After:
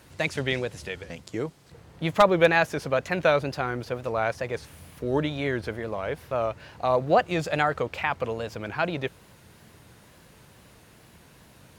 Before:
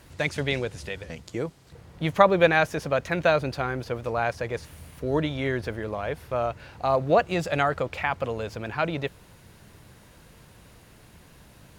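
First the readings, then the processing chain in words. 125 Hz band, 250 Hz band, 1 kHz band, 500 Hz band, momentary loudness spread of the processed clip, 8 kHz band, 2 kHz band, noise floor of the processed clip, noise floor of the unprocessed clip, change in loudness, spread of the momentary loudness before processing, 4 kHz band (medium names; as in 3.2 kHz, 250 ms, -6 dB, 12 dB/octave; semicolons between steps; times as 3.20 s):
-1.5 dB, -0.5 dB, -0.5 dB, -0.5 dB, 13 LU, +0.5 dB, 0.0 dB, -54 dBFS, -53 dBFS, 0.0 dB, 13 LU, +0.5 dB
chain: high-pass 92 Hz 6 dB/octave; wavefolder -6 dBFS; wow and flutter 95 cents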